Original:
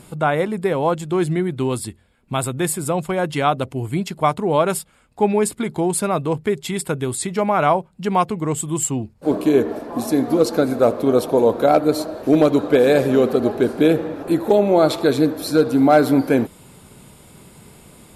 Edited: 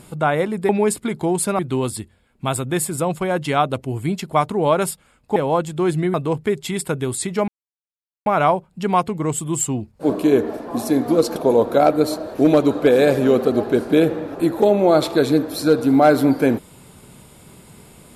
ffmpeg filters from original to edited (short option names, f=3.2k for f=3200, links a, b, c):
-filter_complex "[0:a]asplit=7[a][b][c][d][e][f][g];[a]atrim=end=0.692[h];[b]atrim=start=5.238:end=6.142[i];[c]atrim=start=1.468:end=5.242[j];[d]atrim=start=0.688:end=1.472[k];[e]atrim=start=6.138:end=7.48,asetpts=PTS-STARTPTS,afade=t=out:st=1.338:d=0.004:c=hsin,apad=pad_dur=0.78[l];[f]atrim=start=7.48:end=10.582,asetpts=PTS-STARTPTS,afade=t=in:d=0.004:c=hsin[m];[g]atrim=start=11.238[n];[h][i]acrossfade=d=0.004:c1=hsin:c2=hsin[o];[o][j]acrossfade=d=0.004:c1=hsin:c2=hsin[p];[p][k]acrossfade=d=0.004:c1=hsin:c2=hsin[q];[l][m]concat=n=2:v=0:a=1[r];[q][r]acrossfade=d=0.004:c1=hsin:c2=hsin[s];[s][n]acrossfade=d=0.004:c1=hsin:c2=hsin"